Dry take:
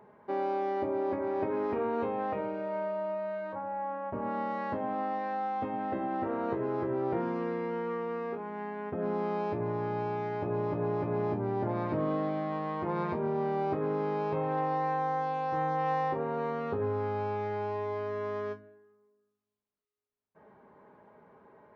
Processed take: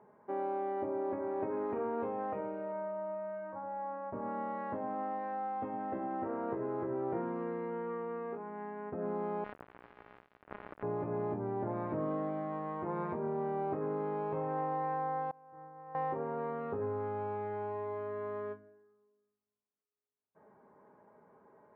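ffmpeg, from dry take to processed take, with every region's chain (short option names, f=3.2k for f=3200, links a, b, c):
-filter_complex "[0:a]asettb=1/sr,asplit=3[a][b][c];[a]atrim=end=2.724[d];[b]atrim=start=2.72:end=3.63,asetpts=PTS-STARTPTS,afade=t=in:d=0.004:c=qsin,afade=t=out:st=0.906:d=0.004:c=qsin,lowpass=2.3k,equalizer=f=440:t=o:w=0.4:g=-7[e];[c]atrim=start=3.626[f];[d][e]acrossfade=d=0.004:c1=hsin:c2=qsin[g];[g][f]acrossfade=d=0.004:c1=qsin:c2=hsin,asettb=1/sr,asplit=3[h][i][j];[h]atrim=end=9.444[k];[i]atrim=start=9.44:end=10.83,asetpts=PTS-STARTPTS,afade=t=in:d=0.004:c=qsin,afade=t=out:st=1.386:d=0.004:c=qsin,highpass=f=190:w=0.5412,highpass=f=190:w=1.3066,acrusher=bits=3:mix=0:aa=0.5[l];[j]atrim=start=10.826[m];[k][l]acrossfade=d=0.004:c1=hsin:c2=qsin[n];[n][m]acrossfade=d=0.004:c1=qsin:c2=hsin,asettb=1/sr,asplit=3[o][p][q];[o]atrim=end=15.314[r];[p]atrim=start=15.31:end=15.95,asetpts=PTS-STARTPTS,afade=t=in:d=0.004:c=qsin,afade=t=out:st=0.636:d=0.004:c=qsin,lowpass=f=1.9k:w=0.5412,lowpass=f=1.9k:w=1.3066,agate=range=-33dB:threshold=-20dB:ratio=3:release=100:detection=peak[s];[q]atrim=start=15.946[t];[r][s]acrossfade=d=0.004:c1=hsin:c2=qsin[u];[u][t]acrossfade=d=0.004:c1=qsin:c2=hsin,lowpass=1.7k,lowshelf=f=64:g=-11.5,volume=-4dB"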